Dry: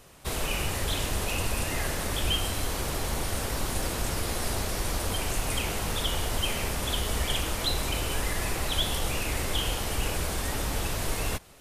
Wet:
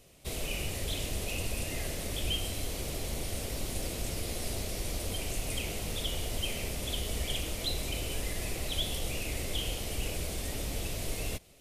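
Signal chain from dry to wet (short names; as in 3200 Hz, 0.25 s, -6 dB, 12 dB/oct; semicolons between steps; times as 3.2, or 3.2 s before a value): band shelf 1200 Hz -9.5 dB 1.3 oct; gain -5 dB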